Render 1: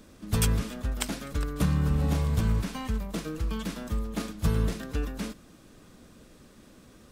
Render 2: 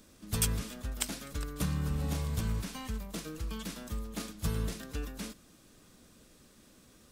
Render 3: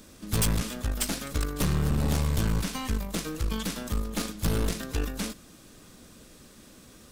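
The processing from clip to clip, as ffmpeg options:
-af "highshelf=f=3.1k:g=8.5,volume=-7.5dB"
-af "aeval=exprs='0.282*(cos(1*acos(clip(val(0)/0.282,-1,1)))-cos(1*PI/2))+0.0398*(cos(8*acos(clip(val(0)/0.282,-1,1)))-cos(8*PI/2))':c=same,asoftclip=type=hard:threshold=-26.5dB,volume=8dB"

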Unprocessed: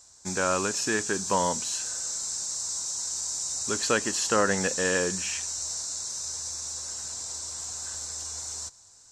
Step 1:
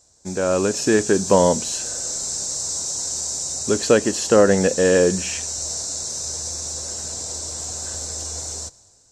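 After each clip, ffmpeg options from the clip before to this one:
-af "dynaudnorm=f=130:g=9:m=9.5dB,lowshelf=f=780:t=q:w=1.5:g=7.5,volume=-3.5dB"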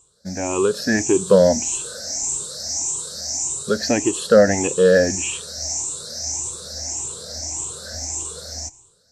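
-af "afftfilt=real='re*pow(10,19/40*sin(2*PI*(0.67*log(max(b,1)*sr/1024/100)/log(2)-(1.7)*(pts-256)/sr)))':imag='im*pow(10,19/40*sin(2*PI*(0.67*log(max(b,1)*sr/1024/100)/log(2)-(1.7)*(pts-256)/sr)))':win_size=1024:overlap=0.75,volume=-4dB"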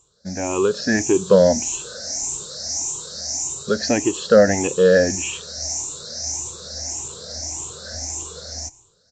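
-af "aresample=16000,aresample=44100"

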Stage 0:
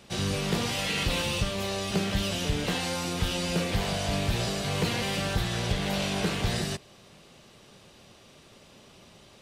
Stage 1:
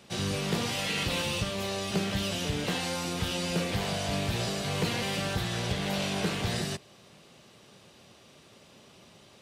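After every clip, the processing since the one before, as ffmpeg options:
-af "highpass=79,volume=-1.5dB"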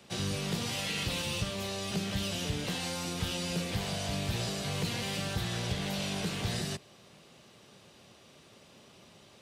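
-filter_complex "[0:a]acrossover=split=200|3000[a][b][c];[b]acompressor=threshold=-35dB:ratio=6[d];[a][d][c]amix=inputs=3:normalize=0,volume=-1.5dB"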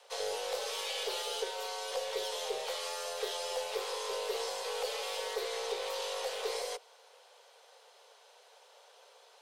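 -af "afreqshift=340,aeval=exprs='0.106*(cos(1*acos(clip(val(0)/0.106,-1,1)))-cos(1*PI/2))+0.00119*(cos(4*acos(clip(val(0)/0.106,-1,1)))-cos(4*PI/2))+0.000841*(cos(8*acos(clip(val(0)/0.106,-1,1)))-cos(8*PI/2))':c=same,volume=-3dB"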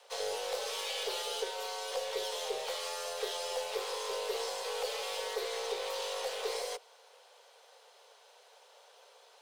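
-ar 44100 -c:a adpcm_ima_wav

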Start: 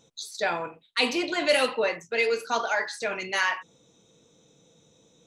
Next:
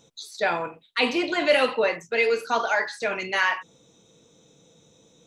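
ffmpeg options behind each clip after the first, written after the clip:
-filter_complex "[0:a]acrossover=split=3700[a][b];[b]acompressor=threshold=-44dB:ratio=4:attack=1:release=60[c];[a][c]amix=inputs=2:normalize=0,volume=3dB"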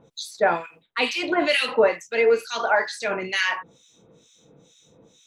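-filter_complex "[0:a]acrossover=split=1800[a][b];[a]aeval=exprs='val(0)*(1-1/2+1/2*cos(2*PI*2.2*n/s))':c=same[c];[b]aeval=exprs='val(0)*(1-1/2-1/2*cos(2*PI*2.2*n/s))':c=same[d];[c][d]amix=inputs=2:normalize=0,volume=6dB"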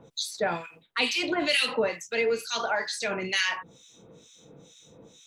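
-filter_complex "[0:a]acrossover=split=210|3000[a][b][c];[b]acompressor=threshold=-37dB:ratio=2[d];[a][d][c]amix=inputs=3:normalize=0,volume=2.5dB"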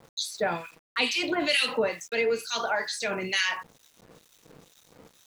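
-af "aeval=exprs='val(0)*gte(abs(val(0)),0.00316)':c=same"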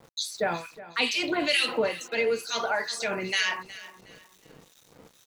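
-af "aecho=1:1:365|730|1095:0.141|0.0424|0.0127"

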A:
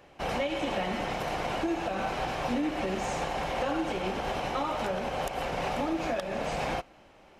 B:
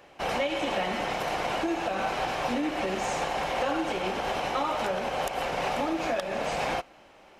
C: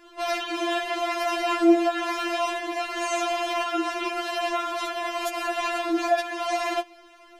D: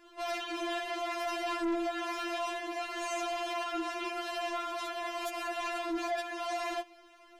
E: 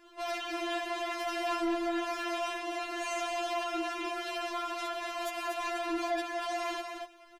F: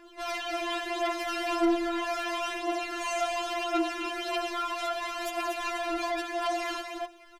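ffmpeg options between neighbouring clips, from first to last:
-af "lowshelf=f=240:g=-8.5,volume=3.5dB"
-af "afftfilt=real='re*4*eq(mod(b,16),0)':imag='im*4*eq(mod(b,16),0)':win_size=2048:overlap=0.75,volume=6.5dB"
-af "asoftclip=type=tanh:threshold=-22dB,volume=-6.5dB"
-af "aecho=1:1:239:0.501"
-af "aphaser=in_gain=1:out_gain=1:delay=3.7:decay=0.46:speed=0.37:type=triangular,volume=2.5dB"

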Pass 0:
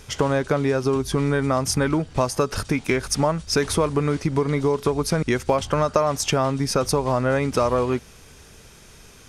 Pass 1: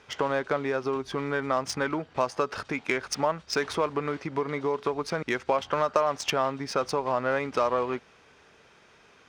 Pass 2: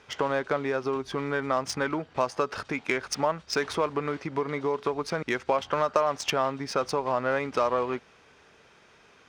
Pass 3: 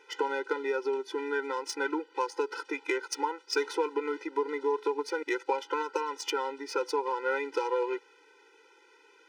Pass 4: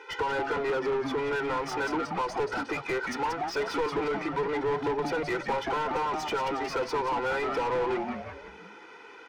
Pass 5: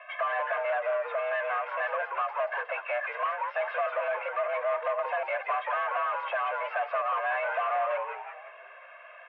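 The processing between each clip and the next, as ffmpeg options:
-af "highpass=f=810:p=1,adynamicsmooth=sensitivity=1:basefreq=2.6k"
-af anull
-af "highpass=210,afftfilt=real='re*eq(mod(floor(b*sr/1024/260),2),1)':imag='im*eq(mod(floor(b*sr/1024/260),2),1)':win_size=1024:overlap=0.75"
-filter_complex "[0:a]asplit=2[a][b];[b]asplit=5[c][d][e][f][g];[c]adelay=180,afreqshift=-140,volume=-9.5dB[h];[d]adelay=360,afreqshift=-280,volume=-16.1dB[i];[e]adelay=540,afreqshift=-420,volume=-22.6dB[j];[f]adelay=720,afreqshift=-560,volume=-29.2dB[k];[g]adelay=900,afreqshift=-700,volume=-35.7dB[l];[h][i][j][k][l]amix=inputs=5:normalize=0[m];[a][m]amix=inputs=2:normalize=0,asplit=2[n][o];[o]highpass=f=720:p=1,volume=27dB,asoftclip=type=tanh:threshold=-15.5dB[p];[n][p]amix=inputs=2:normalize=0,lowpass=f=1.3k:p=1,volume=-6dB,volume=-4.5dB"
-af "highpass=f=320:t=q:w=0.5412,highpass=f=320:t=q:w=1.307,lowpass=f=2.6k:t=q:w=0.5176,lowpass=f=2.6k:t=q:w=0.7071,lowpass=f=2.6k:t=q:w=1.932,afreqshift=210"

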